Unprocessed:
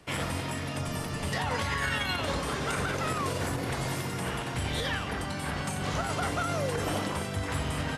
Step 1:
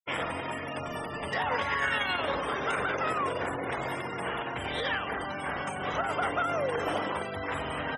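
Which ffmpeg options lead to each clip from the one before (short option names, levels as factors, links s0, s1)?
-af "bandreject=f=4300:w=7.9,afftfilt=real='re*gte(hypot(re,im),0.0158)':imag='im*gte(hypot(re,im),0.0158)':win_size=1024:overlap=0.75,bass=f=250:g=-14,treble=f=4000:g=-9,volume=1.41"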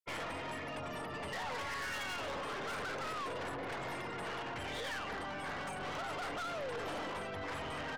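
-filter_complex "[0:a]asplit=2[s0][s1];[s1]acrusher=bits=4:mix=0:aa=0.5,volume=0.447[s2];[s0][s2]amix=inputs=2:normalize=0,aeval=exprs='(tanh(63.1*val(0)+0.2)-tanh(0.2))/63.1':c=same,volume=0.794"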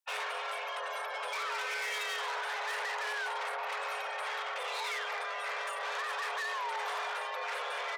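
-af "afreqshift=420,volume=1.58"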